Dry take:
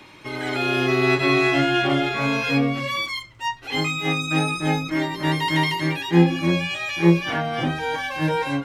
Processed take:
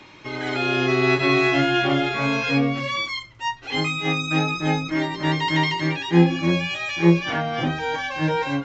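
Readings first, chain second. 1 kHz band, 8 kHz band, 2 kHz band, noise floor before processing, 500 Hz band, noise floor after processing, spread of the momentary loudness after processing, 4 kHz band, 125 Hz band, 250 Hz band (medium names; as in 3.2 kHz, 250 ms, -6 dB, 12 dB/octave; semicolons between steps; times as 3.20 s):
0.0 dB, -2.0 dB, 0.0 dB, -46 dBFS, 0.0 dB, -46 dBFS, 8 LU, 0.0 dB, 0.0 dB, 0.0 dB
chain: resampled via 16 kHz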